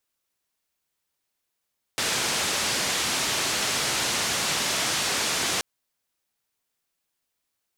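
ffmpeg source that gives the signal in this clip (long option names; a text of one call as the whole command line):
ffmpeg -f lavfi -i "anoisesrc=color=white:duration=3.63:sample_rate=44100:seed=1,highpass=frequency=85,lowpass=frequency=6900,volume=-16.3dB" out.wav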